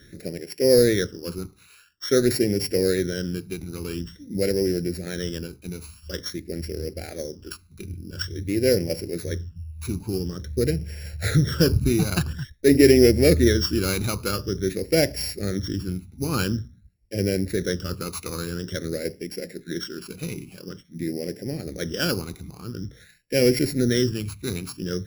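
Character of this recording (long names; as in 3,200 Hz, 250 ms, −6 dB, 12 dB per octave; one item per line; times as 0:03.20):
a buzz of ramps at a fixed pitch in blocks of 8 samples
phaser sweep stages 12, 0.48 Hz, lowest notch 560–1,200 Hz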